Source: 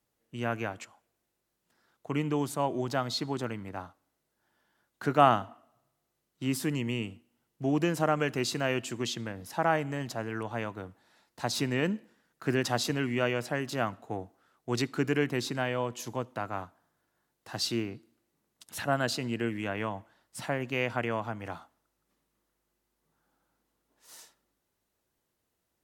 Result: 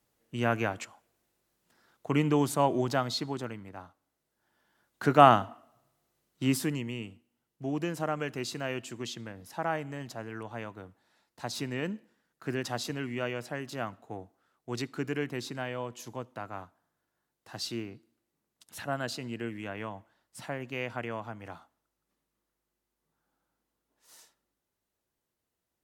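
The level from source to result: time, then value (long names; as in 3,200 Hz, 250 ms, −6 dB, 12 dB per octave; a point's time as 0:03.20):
0:02.73 +4 dB
0:03.75 −6 dB
0:05.04 +3.5 dB
0:06.50 +3.5 dB
0:06.90 −5 dB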